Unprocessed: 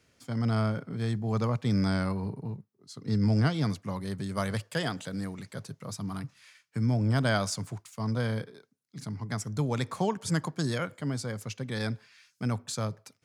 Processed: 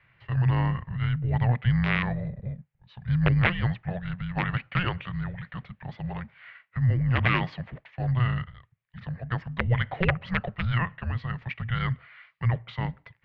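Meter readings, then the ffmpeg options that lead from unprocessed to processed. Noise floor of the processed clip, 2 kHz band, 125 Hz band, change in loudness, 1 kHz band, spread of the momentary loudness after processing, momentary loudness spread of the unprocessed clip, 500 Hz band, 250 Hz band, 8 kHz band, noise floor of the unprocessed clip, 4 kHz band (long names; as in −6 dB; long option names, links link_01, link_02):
−70 dBFS, +7.5 dB, +5.0 dB, +3.5 dB, +3.0 dB, 15 LU, 14 LU, −3.0 dB, −1.0 dB, below −30 dB, −73 dBFS, 0.0 dB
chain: -af "aeval=exprs='(mod(7.5*val(0)+1,2)-1)/7.5':channel_layout=same,highpass=frequency=170:width_type=q:width=0.5412,highpass=frequency=170:width_type=q:width=1.307,lowpass=frequency=3500:width_type=q:width=0.5176,lowpass=frequency=3500:width_type=q:width=0.7071,lowpass=frequency=3500:width_type=q:width=1.932,afreqshift=-360,equalizer=frequency=125:width_type=o:width=1:gain=12,equalizer=frequency=250:width_type=o:width=1:gain=-8,equalizer=frequency=500:width_type=o:width=1:gain=6,equalizer=frequency=2000:width_type=o:width=1:gain=12"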